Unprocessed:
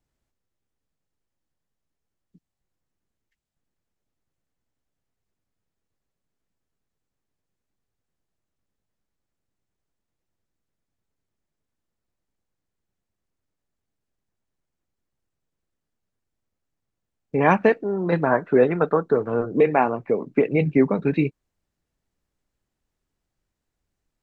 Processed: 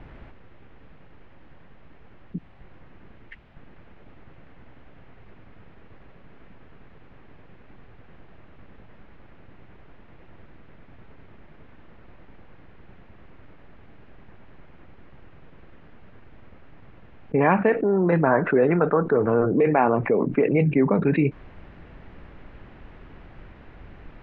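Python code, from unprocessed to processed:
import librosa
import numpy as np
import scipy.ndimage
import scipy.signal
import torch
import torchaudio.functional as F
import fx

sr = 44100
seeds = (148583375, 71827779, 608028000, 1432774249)

y = scipy.signal.sosfilt(scipy.signal.butter(4, 2600.0, 'lowpass', fs=sr, output='sos'), x)
y = fx.env_flatten(y, sr, amount_pct=70)
y = y * 10.0 ** (-4.0 / 20.0)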